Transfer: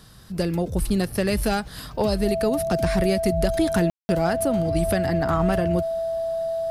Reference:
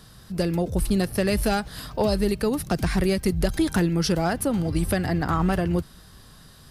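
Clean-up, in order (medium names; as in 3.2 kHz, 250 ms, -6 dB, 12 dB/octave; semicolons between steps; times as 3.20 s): band-stop 660 Hz, Q 30; room tone fill 3.90–4.09 s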